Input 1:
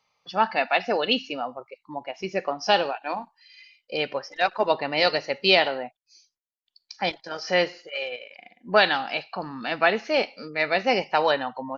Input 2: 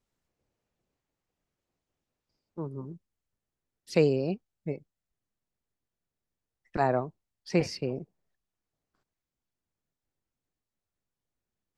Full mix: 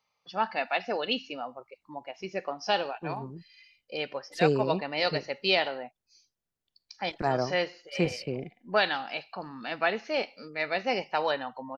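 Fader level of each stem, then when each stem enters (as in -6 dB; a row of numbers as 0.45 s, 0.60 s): -6.5 dB, -1.5 dB; 0.00 s, 0.45 s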